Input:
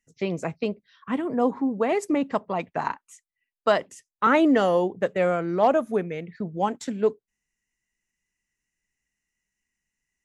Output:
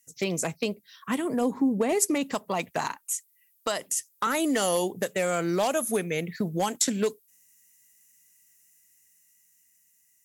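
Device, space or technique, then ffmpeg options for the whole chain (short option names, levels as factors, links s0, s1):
FM broadcast chain: -filter_complex "[0:a]highpass=69,dynaudnorm=f=730:g=7:m=2.11,acrossover=split=2000|6800[s0][s1][s2];[s0]acompressor=threshold=0.0562:ratio=4[s3];[s1]acompressor=threshold=0.0141:ratio=4[s4];[s2]acompressor=threshold=0.00316:ratio=4[s5];[s3][s4][s5]amix=inputs=3:normalize=0,aemphasis=mode=production:type=50fm,alimiter=limit=0.158:level=0:latency=1:release=374,asoftclip=type=hard:threshold=0.106,lowpass=f=15000:w=0.5412,lowpass=f=15000:w=1.3066,aemphasis=mode=production:type=50fm,asplit=3[s6][s7][s8];[s6]afade=t=out:st=1.4:d=0.02[s9];[s7]tiltshelf=f=660:g=6,afade=t=in:st=1.4:d=0.02,afade=t=out:st=1.98:d=0.02[s10];[s8]afade=t=in:st=1.98:d=0.02[s11];[s9][s10][s11]amix=inputs=3:normalize=0,volume=1.19"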